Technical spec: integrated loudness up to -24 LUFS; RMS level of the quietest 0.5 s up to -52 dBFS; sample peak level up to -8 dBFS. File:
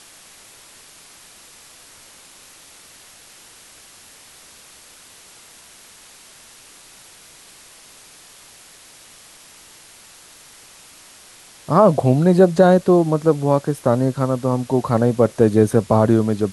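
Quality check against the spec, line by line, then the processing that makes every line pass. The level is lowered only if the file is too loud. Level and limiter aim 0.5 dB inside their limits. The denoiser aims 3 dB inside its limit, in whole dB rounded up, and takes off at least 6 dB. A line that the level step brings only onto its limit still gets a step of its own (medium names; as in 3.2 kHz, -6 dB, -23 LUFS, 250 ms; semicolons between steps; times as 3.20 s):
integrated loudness -16.5 LUFS: fail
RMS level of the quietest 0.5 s -46 dBFS: fail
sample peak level -2.0 dBFS: fail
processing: trim -8 dB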